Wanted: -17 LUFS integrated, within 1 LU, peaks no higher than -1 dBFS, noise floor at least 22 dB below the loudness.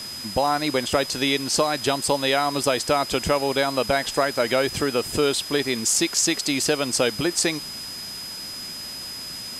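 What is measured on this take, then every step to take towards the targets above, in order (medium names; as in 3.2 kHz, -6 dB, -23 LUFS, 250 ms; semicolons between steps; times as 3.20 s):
steady tone 5 kHz; tone level -33 dBFS; noise floor -35 dBFS; noise floor target -45 dBFS; loudness -23.0 LUFS; peak level -5.5 dBFS; loudness target -17.0 LUFS
-> band-stop 5 kHz, Q 30; noise print and reduce 10 dB; trim +6 dB; peak limiter -1 dBFS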